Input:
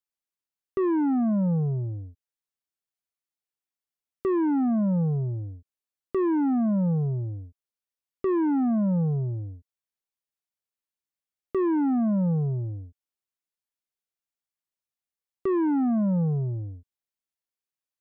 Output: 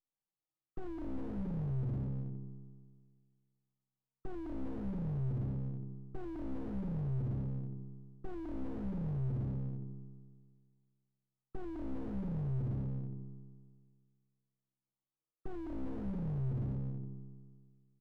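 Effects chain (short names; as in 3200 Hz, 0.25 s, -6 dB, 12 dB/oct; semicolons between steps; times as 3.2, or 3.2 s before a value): minimum comb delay 6.3 ms; bell 72 Hz -7 dB 0.63 oct; reverse; compressor 6:1, threshold -34 dBFS, peak gain reduction 11.5 dB; reverse; brick-wall FIR low-pass 1300 Hz; low shelf 430 Hz +8.5 dB; resonator 66 Hz, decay 1.8 s, harmonics all, mix 90%; echo 0.393 s -19 dB; slew limiter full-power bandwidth 0.7 Hz; gain +12 dB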